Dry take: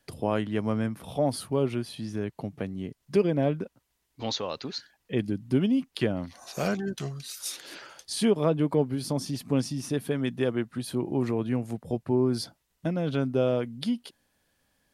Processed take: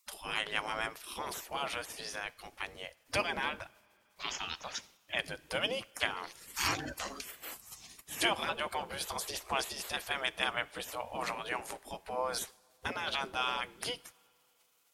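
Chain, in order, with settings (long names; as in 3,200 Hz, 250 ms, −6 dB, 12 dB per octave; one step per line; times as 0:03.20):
gate on every frequency bin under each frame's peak −20 dB weak
coupled-rooms reverb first 0.58 s, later 3.9 s, from −17 dB, DRR 18.5 dB
level +8.5 dB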